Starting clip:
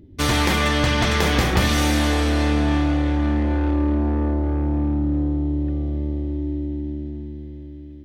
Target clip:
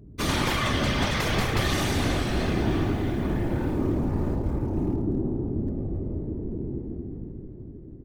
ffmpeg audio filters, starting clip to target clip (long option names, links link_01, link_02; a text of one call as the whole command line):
ffmpeg -i in.wav -filter_complex "[0:a]bandreject=frequency=88.52:width_type=h:width=4,bandreject=frequency=177.04:width_type=h:width=4,bandreject=frequency=265.56:width_type=h:width=4,bandreject=frequency=354.08:width_type=h:width=4,bandreject=frequency=442.6:width_type=h:width=4,bandreject=frequency=531.12:width_type=h:width=4,bandreject=frequency=619.64:width_type=h:width=4,bandreject=frequency=708.16:width_type=h:width=4,bandreject=frequency=796.68:width_type=h:width=4,bandreject=frequency=885.2:width_type=h:width=4,bandreject=frequency=973.72:width_type=h:width=4,bandreject=frequency=1062.24:width_type=h:width=4,bandreject=frequency=1150.76:width_type=h:width=4,bandreject=frequency=1239.28:width_type=h:width=4,bandreject=frequency=1327.8:width_type=h:width=4,bandreject=frequency=1416.32:width_type=h:width=4,bandreject=frequency=1504.84:width_type=h:width=4,bandreject=frequency=1593.36:width_type=h:width=4,bandreject=frequency=1681.88:width_type=h:width=4,bandreject=frequency=1770.4:width_type=h:width=4,bandreject=frequency=1858.92:width_type=h:width=4,aeval=exprs='val(0)+0.01*(sin(2*PI*60*n/s)+sin(2*PI*2*60*n/s)/2+sin(2*PI*3*60*n/s)/3+sin(2*PI*4*60*n/s)/4+sin(2*PI*5*60*n/s)/5)':channel_layout=same,acrossover=split=1500[link_01][link_02];[link_02]acrusher=bits=7:mix=0:aa=0.000001[link_03];[link_01][link_03]amix=inputs=2:normalize=0,afftfilt=real='hypot(re,im)*cos(2*PI*random(0))':imag='hypot(re,im)*sin(2*PI*random(1))':win_size=512:overlap=0.75,asplit=2[link_04][link_05];[link_05]adelay=102,lowpass=frequency=4300:poles=1,volume=-9dB,asplit=2[link_06][link_07];[link_07]adelay=102,lowpass=frequency=4300:poles=1,volume=0.28,asplit=2[link_08][link_09];[link_09]adelay=102,lowpass=frequency=4300:poles=1,volume=0.28[link_10];[link_04][link_06][link_08][link_10]amix=inputs=4:normalize=0" out.wav